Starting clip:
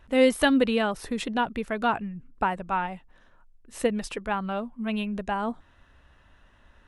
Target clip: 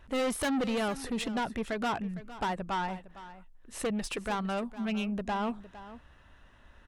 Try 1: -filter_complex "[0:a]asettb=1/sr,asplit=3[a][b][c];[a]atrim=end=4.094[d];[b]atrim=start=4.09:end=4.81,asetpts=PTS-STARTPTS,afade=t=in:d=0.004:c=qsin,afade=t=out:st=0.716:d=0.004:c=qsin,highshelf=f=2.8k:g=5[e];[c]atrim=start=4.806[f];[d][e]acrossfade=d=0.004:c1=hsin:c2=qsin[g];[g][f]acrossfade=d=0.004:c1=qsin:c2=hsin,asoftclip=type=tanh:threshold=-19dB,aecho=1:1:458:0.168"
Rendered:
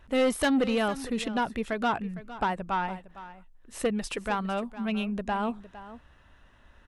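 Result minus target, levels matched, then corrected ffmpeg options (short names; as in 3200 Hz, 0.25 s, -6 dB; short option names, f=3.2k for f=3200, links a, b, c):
soft clip: distortion -6 dB
-filter_complex "[0:a]asettb=1/sr,asplit=3[a][b][c];[a]atrim=end=4.094[d];[b]atrim=start=4.09:end=4.81,asetpts=PTS-STARTPTS,afade=t=in:d=0.004:c=qsin,afade=t=out:st=0.716:d=0.004:c=qsin,highshelf=f=2.8k:g=5[e];[c]atrim=start=4.806[f];[d][e]acrossfade=d=0.004:c1=hsin:c2=qsin[g];[g][f]acrossfade=d=0.004:c1=qsin:c2=hsin,asoftclip=type=tanh:threshold=-27dB,aecho=1:1:458:0.168"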